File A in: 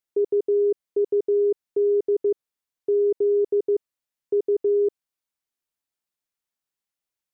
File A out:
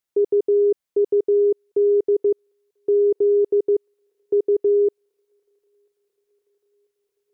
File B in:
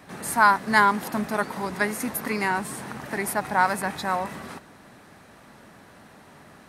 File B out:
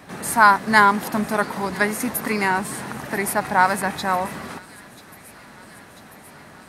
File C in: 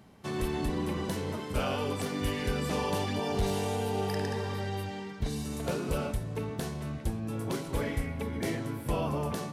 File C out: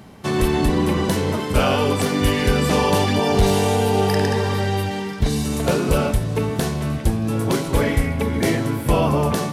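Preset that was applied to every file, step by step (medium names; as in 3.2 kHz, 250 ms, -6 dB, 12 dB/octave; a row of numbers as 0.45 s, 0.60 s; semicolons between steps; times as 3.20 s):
feedback echo behind a high-pass 991 ms, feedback 73%, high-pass 2.4 kHz, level -18 dB; normalise loudness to -20 LUFS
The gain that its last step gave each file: +3.5 dB, +4.5 dB, +13.0 dB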